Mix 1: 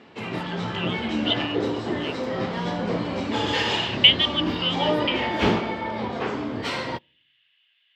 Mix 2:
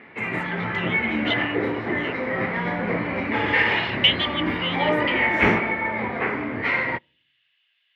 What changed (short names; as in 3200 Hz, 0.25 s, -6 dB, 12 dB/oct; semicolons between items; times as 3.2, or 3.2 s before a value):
background: add synth low-pass 2100 Hz, resonance Q 5; master: add bell 3200 Hz -4.5 dB 0.49 oct